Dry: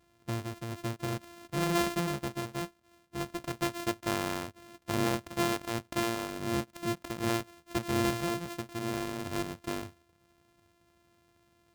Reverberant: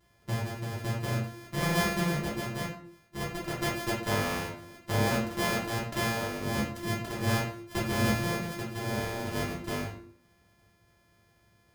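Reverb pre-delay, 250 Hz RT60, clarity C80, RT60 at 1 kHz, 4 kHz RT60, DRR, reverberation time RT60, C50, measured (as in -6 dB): 5 ms, 0.65 s, 9.5 dB, 0.50 s, 0.40 s, -6.5 dB, 0.55 s, 4.5 dB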